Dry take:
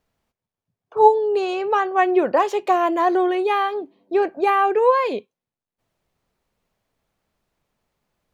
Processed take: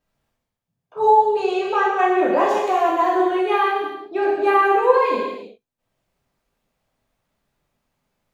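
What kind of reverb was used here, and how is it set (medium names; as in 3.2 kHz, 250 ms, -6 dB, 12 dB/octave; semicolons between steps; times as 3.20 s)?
gated-style reverb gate 400 ms falling, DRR -7 dB; trim -6.5 dB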